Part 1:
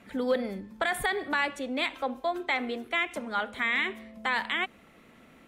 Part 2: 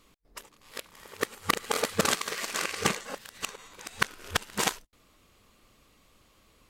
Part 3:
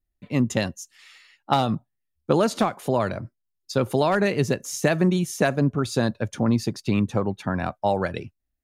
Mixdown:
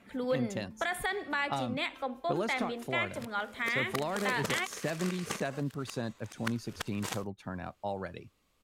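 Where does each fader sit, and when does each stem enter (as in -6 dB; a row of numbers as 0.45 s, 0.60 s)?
-4.5 dB, -11.0 dB, -13.5 dB; 0.00 s, 2.45 s, 0.00 s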